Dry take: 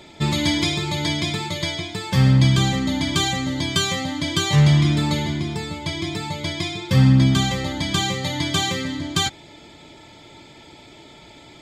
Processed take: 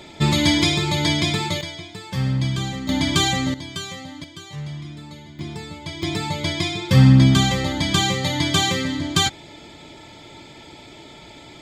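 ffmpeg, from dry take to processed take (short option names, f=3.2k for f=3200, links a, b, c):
-af "asetnsamples=n=441:p=0,asendcmd='1.61 volume volume -7dB;2.89 volume volume 2dB;3.54 volume volume -10dB;4.24 volume volume -17.5dB;5.39 volume volume -5.5dB;6.03 volume volume 2.5dB',volume=3dB"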